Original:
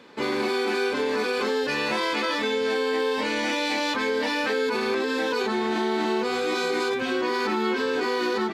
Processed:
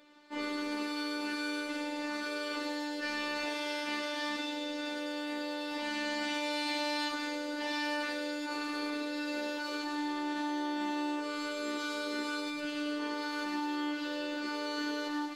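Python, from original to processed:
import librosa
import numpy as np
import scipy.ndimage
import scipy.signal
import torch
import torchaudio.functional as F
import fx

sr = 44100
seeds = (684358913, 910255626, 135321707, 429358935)

y = fx.stretch_vocoder(x, sr, factor=1.8)
y = fx.echo_wet_highpass(y, sr, ms=104, feedback_pct=72, hz=4300.0, wet_db=-3.0)
y = fx.robotise(y, sr, hz=295.0)
y = F.gain(torch.from_numpy(y), -7.5).numpy()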